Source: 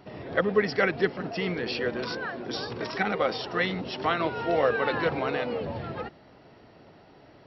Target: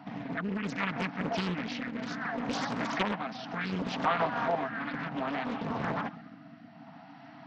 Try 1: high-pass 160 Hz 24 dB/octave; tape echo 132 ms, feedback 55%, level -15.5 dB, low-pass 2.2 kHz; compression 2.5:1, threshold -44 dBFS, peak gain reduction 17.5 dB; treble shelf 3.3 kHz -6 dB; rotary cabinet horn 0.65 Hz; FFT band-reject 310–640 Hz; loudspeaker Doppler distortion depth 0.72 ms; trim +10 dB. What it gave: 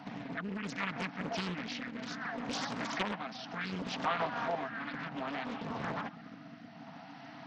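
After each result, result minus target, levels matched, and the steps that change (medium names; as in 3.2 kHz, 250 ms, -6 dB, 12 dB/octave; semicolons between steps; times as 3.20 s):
compression: peak gain reduction +5.5 dB; 8 kHz band +5.5 dB
change: compression 2.5:1, threshold -34.5 dBFS, peak gain reduction 12 dB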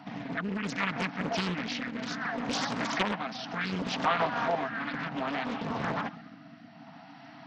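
8 kHz band +5.5 dB
change: treble shelf 3.3 kHz -15.5 dB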